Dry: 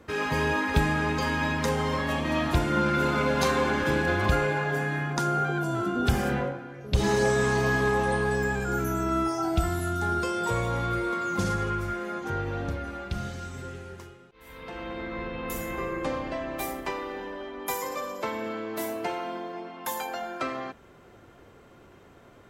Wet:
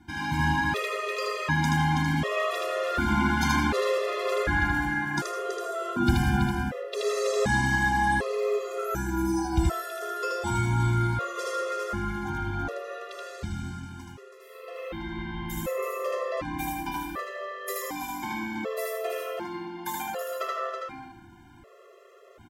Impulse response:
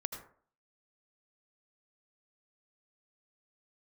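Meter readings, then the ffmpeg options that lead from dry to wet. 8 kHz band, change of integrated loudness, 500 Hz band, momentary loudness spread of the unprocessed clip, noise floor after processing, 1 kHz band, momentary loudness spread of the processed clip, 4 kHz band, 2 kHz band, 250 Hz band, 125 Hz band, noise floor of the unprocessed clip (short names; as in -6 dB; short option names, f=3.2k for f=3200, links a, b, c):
0.0 dB, -0.5 dB, -1.0 dB, 12 LU, -52 dBFS, 0.0 dB, 12 LU, 0.0 dB, +0.5 dB, -0.5 dB, +0.5 dB, -53 dBFS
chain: -filter_complex "[0:a]aecho=1:1:327:0.447,asplit=2[a][b];[1:a]atrim=start_sample=2205,adelay=78[c];[b][c]afir=irnorm=-1:irlink=0,volume=-0.5dB[d];[a][d]amix=inputs=2:normalize=0,afftfilt=real='re*gt(sin(2*PI*0.67*pts/sr)*(1-2*mod(floor(b*sr/1024/350),2)),0)':imag='im*gt(sin(2*PI*0.67*pts/sr)*(1-2*mod(floor(b*sr/1024/350),2)),0)':win_size=1024:overlap=0.75"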